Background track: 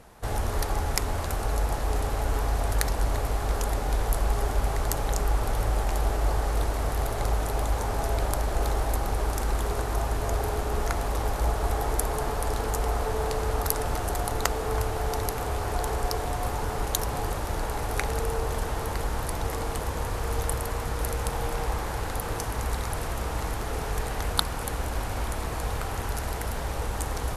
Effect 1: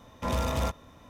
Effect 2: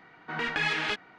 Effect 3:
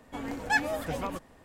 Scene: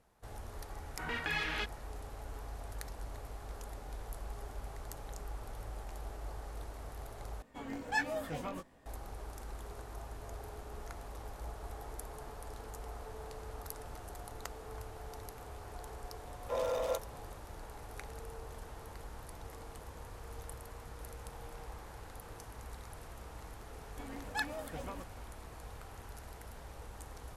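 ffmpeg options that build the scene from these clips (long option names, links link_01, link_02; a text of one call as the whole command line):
ffmpeg -i bed.wav -i cue0.wav -i cue1.wav -i cue2.wav -filter_complex "[3:a]asplit=2[link_01][link_02];[0:a]volume=-18.5dB[link_03];[link_01]flanger=delay=17.5:depth=4.4:speed=1.4[link_04];[1:a]highpass=frequency=510:width_type=q:width=5.5[link_05];[link_03]asplit=2[link_06][link_07];[link_06]atrim=end=7.424[link_08];[link_04]atrim=end=1.44,asetpts=PTS-STARTPTS,volume=-4dB[link_09];[link_07]atrim=start=8.856[link_10];[2:a]atrim=end=1.18,asetpts=PTS-STARTPTS,volume=-7.5dB,afade=type=in:duration=0.004:curve=hsin,afade=type=out:start_time=1.176:duration=0.004:curve=hsin,adelay=700[link_11];[link_05]atrim=end=1.09,asetpts=PTS-STARTPTS,volume=-10.5dB,afade=type=in:duration=0.004:curve=hsin,afade=type=out:start_time=1.086:duration=0.004:curve=hsin,adelay=16270[link_12];[link_02]atrim=end=1.44,asetpts=PTS-STARTPTS,volume=-11dB,afade=type=in:duration=0.004:curve=hsin,afade=type=out:start_time=1.436:duration=0.004:curve=hsin,adelay=23850[link_13];[link_08][link_09]acrossfade=duration=0.004:curve1=hsin:curve2=hsin[link_14];[link_14][link_10]acrossfade=duration=0.004:curve1=hsin:curve2=hsin[link_15];[link_15][link_11][link_12][link_13]amix=inputs=4:normalize=0" out.wav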